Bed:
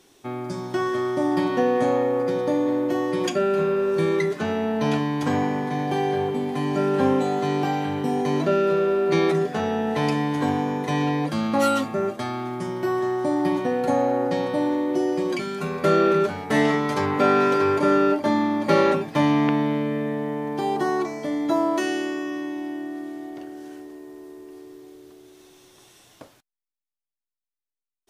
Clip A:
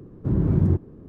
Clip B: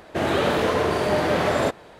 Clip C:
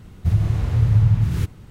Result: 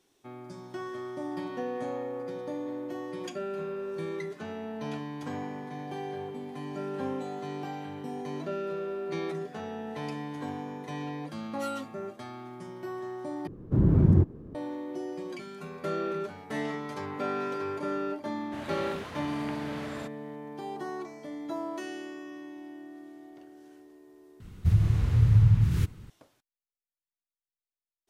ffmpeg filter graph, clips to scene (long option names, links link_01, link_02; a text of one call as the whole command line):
ffmpeg -i bed.wav -i cue0.wav -i cue1.wav -i cue2.wav -filter_complex "[0:a]volume=-13.5dB[link_01];[2:a]equalizer=frequency=470:width=0.96:gain=-10[link_02];[3:a]equalizer=frequency=670:width_type=o:width=0.88:gain=-6[link_03];[link_01]asplit=3[link_04][link_05][link_06];[link_04]atrim=end=13.474[link_07];[1:a]atrim=end=1.08,asetpts=PTS-STARTPTS,volume=-0.5dB[link_08];[link_05]atrim=start=14.546:end=24.404[link_09];[link_03]atrim=end=1.7,asetpts=PTS-STARTPTS,volume=-4dB[link_10];[link_06]atrim=start=26.096[link_11];[link_02]atrim=end=1.99,asetpts=PTS-STARTPTS,volume=-15.5dB,afade=type=in:duration=0.004:curve=hsin,afade=type=out:start_time=1.986:duration=0.004:curve=hsin,adelay=18370[link_12];[link_07][link_08]acrossfade=duration=0.004:curve1=hsin:curve2=hsin[link_13];[link_13][link_09]acrossfade=duration=0.004:curve1=hsin:curve2=hsin[link_14];[link_14][link_10]acrossfade=duration=0.004:curve1=hsin:curve2=hsin[link_15];[link_15][link_11]acrossfade=duration=0.004:curve1=hsin:curve2=hsin[link_16];[link_16][link_12]amix=inputs=2:normalize=0" out.wav